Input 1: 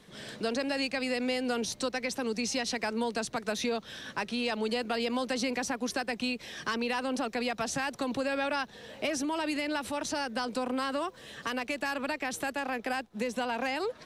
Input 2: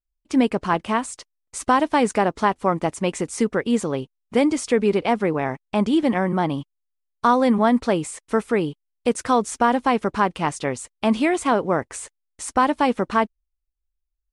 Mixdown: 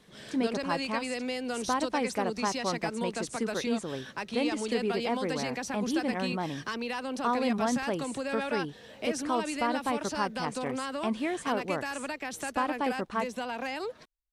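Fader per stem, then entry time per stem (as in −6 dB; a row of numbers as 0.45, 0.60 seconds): −3.0, −11.5 decibels; 0.00, 0.00 seconds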